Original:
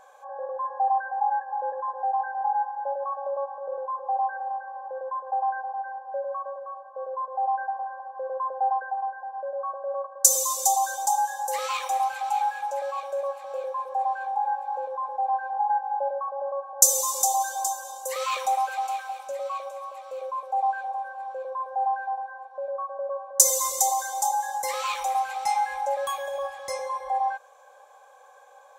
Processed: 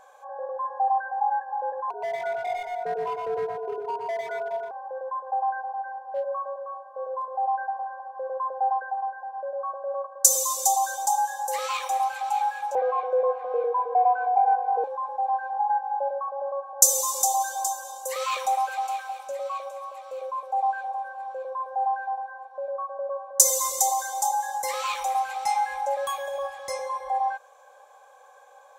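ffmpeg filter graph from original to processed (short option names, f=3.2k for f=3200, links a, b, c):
-filter_complex "[0:a]asettb=1/sr,asplit=3[a][b][c];[a]atrim=end=1.904[d];[b]atrim=start=1.9:end=4.71,asetpts=PTS-STARTPTS,afade=t=in:d=0.004:c=qsin,afade=t=out:st=2.806:d=0.004:c=qsin,afreqshift=-110,asoftclip=type=hard:threshold=-26.5dB,aecho=1:1:121|620:0.631|0.237,atrim=end_sample=123921[e];[c]atrim=start=4.706[f];[d][e]acrossfade=d=0.004:c1=hsin:c2=qsin[g];[g][f]acrossfade=d=0.004:c1=qsin:c2=hsin,asettb=1/sr,asplit=3[h][i][j];[h]atrim=end=6.114[k];[i]atrim=start=6.11:end=7.35,asetpts=PTS-STARTPTS,afade=t=in:d=0.004:c=qsin,afade=t=out:st=1.236:d=0.004:c=qsin,asoftclip=type=hard:threshold=-24dB,asplit=2[l][m];[m]adelay=29,volume=-8.5dB[n];[l][n]amix=inputs=2:normalize=0,atrim=end_sample=54684[o];[j]atrim=start=7.346[p];[k][o]acrossfade=d=0.004:c1=hsin:c2=qsin[q];[q][p]acrossfade=d=0.004:c1=qsin:c2=hsin,asettb=1/sr,asplit=3[r][s][t];[r]atrim=end=12.754[u];[s]atrim=start=12.75:end=14.84,asetpts=PTS-STARTPTS,afade=t=in:d=0.004:c=qsin,afade=t=out:st=2.086:d=0.004:c=qsin,lowpass=1.5k,afreqshift=-47,acontrast=61[v];[t]atrim=start=14.836[w];[u][v]acrossfade=d=0.004:c1=hsin:c2=qsin[x];[x][w]acrossfade=d=0.004:c1=qsin:c2=hsin"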